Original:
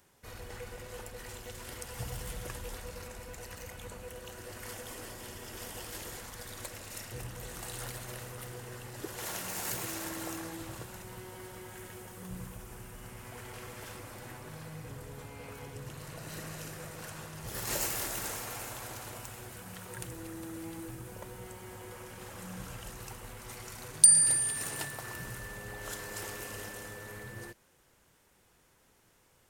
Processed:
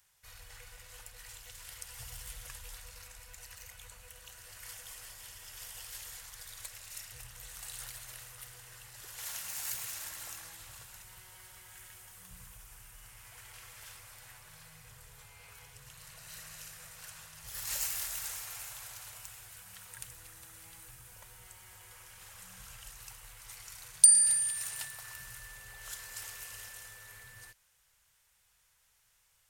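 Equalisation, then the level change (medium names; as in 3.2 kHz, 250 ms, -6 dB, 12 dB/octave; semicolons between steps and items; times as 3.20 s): amplifier tone stack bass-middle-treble 10-0-10; 0.0 dB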